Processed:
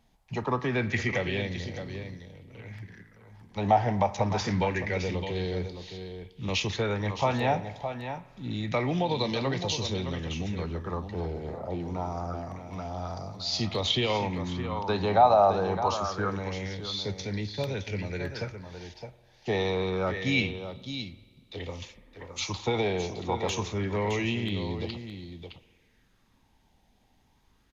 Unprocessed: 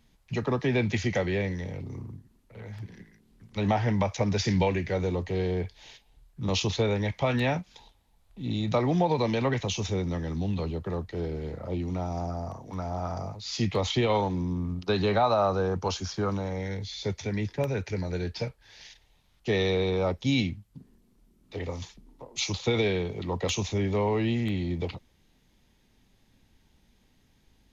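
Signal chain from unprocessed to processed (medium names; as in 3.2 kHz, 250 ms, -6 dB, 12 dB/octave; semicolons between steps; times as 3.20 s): delay 614 ms -9 dB; spring tank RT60 1.5 s, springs 48 ms, chirp 65 ms, DRR 15.5 dB; sweeping bell 0.26 Hz 740–4400 Hz +11 dB; trim -3.5 dB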